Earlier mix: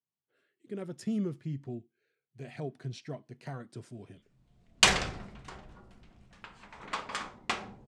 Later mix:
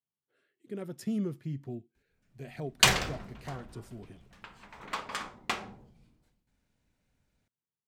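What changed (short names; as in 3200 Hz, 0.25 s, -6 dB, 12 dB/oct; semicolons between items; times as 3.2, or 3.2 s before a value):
background: entry -2.00 s; master: remove LPF 9500 Hz 24 dB/oct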